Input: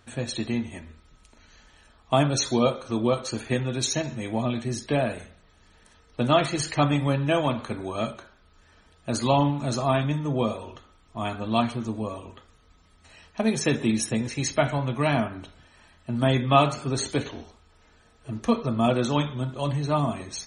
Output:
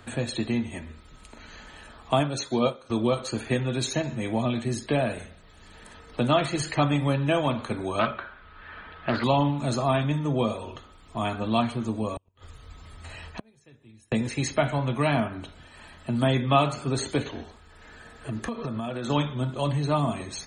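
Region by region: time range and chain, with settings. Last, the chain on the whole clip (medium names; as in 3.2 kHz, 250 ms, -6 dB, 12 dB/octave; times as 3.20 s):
2.19–2.90 s: bass shelf 66 Hz -11.5 dB + upward expansion, over -39 dBFS
7.99–9.24 s: inverse Chebyshev low-pass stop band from 7 kHz + peaking EQ 1.5 kHz +11 dB 1.7 oct + loudspeaker Doppler distortion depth 0.25 ms
12.16–14.12 s: resonant low shelf 140 Hz +8.5 dB, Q 1.5 + inverted gate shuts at -26 dBFS, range -40 dB
17.35–19.10 s: peaking EQ 1.7 kHz +7 dB 0.33 oct + compression 16:1, threshold -30 dBFS
whole clip: band-stop 5.7 kHz, Q 5.2; three bands compressed up and down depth 40%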